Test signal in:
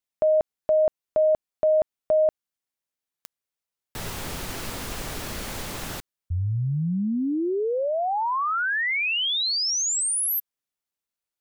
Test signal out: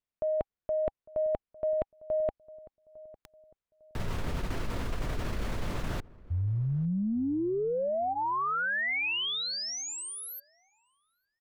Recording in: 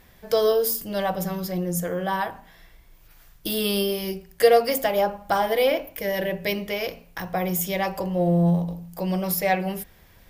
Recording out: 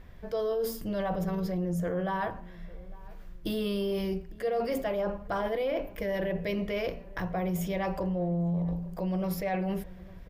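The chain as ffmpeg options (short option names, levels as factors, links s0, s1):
-filter_complex "[0:a]lowpass=f=1600:p=1,lowshelf=f=86:g=10,bandreject=f=810:w=13,areverse,acompressor=threshold=0.0355:ratio=6:attack=14:release=48:knee=1:detection=rms,areverse,asplit=2[s0][s1];[s1]adelay=853,lowpass=f=980:p=1,volume=0.1,asplit=2[s2][s3];[s3]adelay=853,lowpass=f=980:p=1,volume=0.38,asplit=2[s4][s5];[s5]adelay=853,lowpass=f=980:p=1,volume=0.38[s6];[s0][s2][s4][s6]amix=inputs=4:normalize=0"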